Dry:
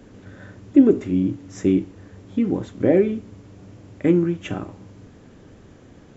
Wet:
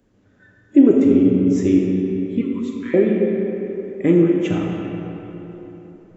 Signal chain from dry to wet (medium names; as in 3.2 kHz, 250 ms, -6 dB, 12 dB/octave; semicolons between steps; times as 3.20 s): 2.41–2.94 s: steep high-pass 990 Hz 96 dB/octave; spectral noise reduction 17 dB; algorithmic reverb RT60 3.8 s, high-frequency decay 0.55×, pre-delay 0 ms, DRR -0.5 dB; trim +1 dB